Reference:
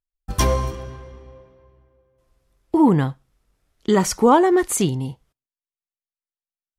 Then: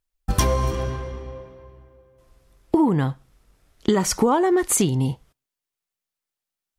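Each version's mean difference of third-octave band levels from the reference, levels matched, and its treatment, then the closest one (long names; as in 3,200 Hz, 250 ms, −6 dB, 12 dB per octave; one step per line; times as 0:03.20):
4.5 dB: downward compressor 8 to 1, threshold −24 dBFS, peak gain reduction 14 dB
level +8 dB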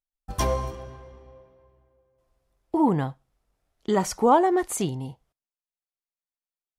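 1.5 dB: parametric band 720 Hz +7 dB 0.9 octaves
level −7.5 dB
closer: second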